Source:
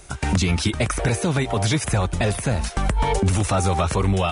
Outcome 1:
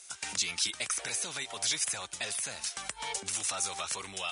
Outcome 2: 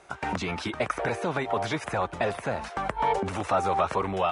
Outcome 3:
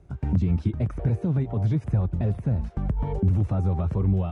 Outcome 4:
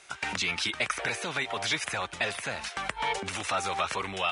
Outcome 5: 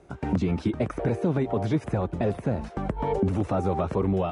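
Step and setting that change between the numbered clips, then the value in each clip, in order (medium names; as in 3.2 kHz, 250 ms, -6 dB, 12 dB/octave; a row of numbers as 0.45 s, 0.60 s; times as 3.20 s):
band-pass filter, frequency: 6.9 kHz, 930 Hz, 120 Hz, 2.4 kHz, 320 Hz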